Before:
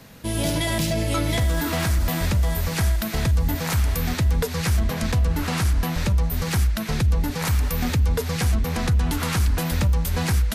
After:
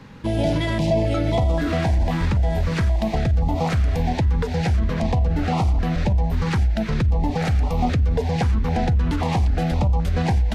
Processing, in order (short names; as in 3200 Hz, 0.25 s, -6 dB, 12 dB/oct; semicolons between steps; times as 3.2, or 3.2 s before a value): tape spacing loss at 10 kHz 22 dB; notches 50/100 Hz; limiter -19 dBFS, peak gain reduction 6 dB; bell 780 Hz +12.5 dB 0.64 oct; stepped notch 3.8 Hz 690–1600 Hz; gain +5.5 dB